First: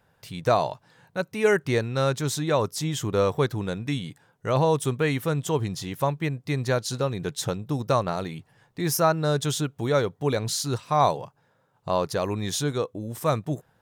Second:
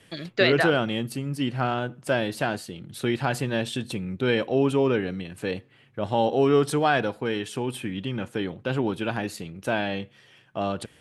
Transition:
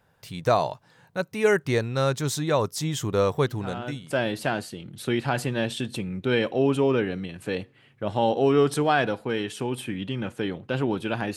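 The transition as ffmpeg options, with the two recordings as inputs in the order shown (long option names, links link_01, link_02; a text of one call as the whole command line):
ffmpeg -i cue0.wav -i cue1.wav -filter_complex "[0:a]apad=whole_dur=11.36,atrim=end=11.36,atrim=end=4.28,asetpts=PTS-STARTPTS[link_01];[1:a]atrim=start=1.42:end=9.32,asetpts=PTS-STARTPTS[link_02];[link_01][link_02]acrossfade=duration=0.82:curve1=tri:curve2=tri" out.wav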